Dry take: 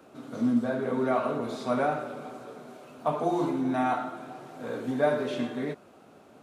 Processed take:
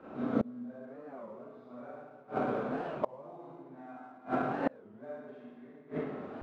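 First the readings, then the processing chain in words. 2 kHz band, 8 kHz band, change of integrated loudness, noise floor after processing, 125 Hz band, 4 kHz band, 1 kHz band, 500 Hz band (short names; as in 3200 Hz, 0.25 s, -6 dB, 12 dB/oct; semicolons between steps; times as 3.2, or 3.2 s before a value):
-8.5 dB, under -20 dB, -8.5 dB, -55 dBFS, -7.5 dB, -15.0 dB, -8.5 dB, -8.5 dB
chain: LPF 1800 Hz 12 dB/oct; Schroeder reverb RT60 1.2 s, combs from 29 ms, DRR -9 dB; in parallel at -10.5 dB: crossover distortion -33.5 dBFS; on the sum: flipped gate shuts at -16 dBFS, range -31 dB; record warp 33 1/3 rpm, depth 250 cents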